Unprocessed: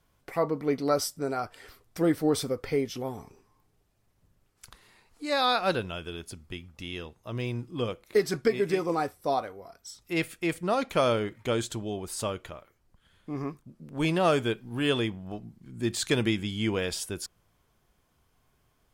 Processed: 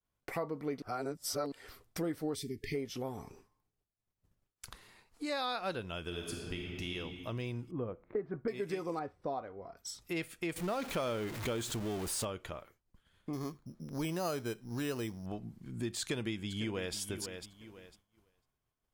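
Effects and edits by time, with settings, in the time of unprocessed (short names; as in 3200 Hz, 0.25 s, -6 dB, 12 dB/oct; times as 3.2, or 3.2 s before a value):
0.82–1.52 reverse
2.35–2.74 spectral delete 450–1700 Hz
6.05–6.92 reverb throw, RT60 2 s, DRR -0.5 dB
7.71–8.48 Bessel low-pass 1100 Hz, order 4
8.99–9.77 tape spacing loss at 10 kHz 30 dB
10.56–12.25 zero-crossing step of -31.5 dBFS
13.33–15.26 careless resampling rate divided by 8×, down filtered, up hold
16–16.95 echo throw 0.5 s, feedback 25%, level -14.5 dB
whole clip: expander -56 dBFS; compressor 3:1, threshold -38 dBFS; gain +1 dB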